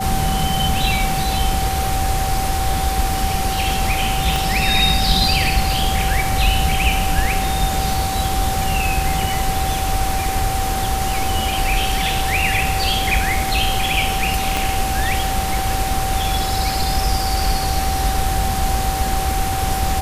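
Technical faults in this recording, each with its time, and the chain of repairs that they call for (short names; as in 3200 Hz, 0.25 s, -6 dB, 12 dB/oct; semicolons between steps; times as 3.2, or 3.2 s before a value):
tone 770 Hz -22 dBFS
4.36 pop
14.57 pop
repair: de-click; notch 770 Hz, Q 30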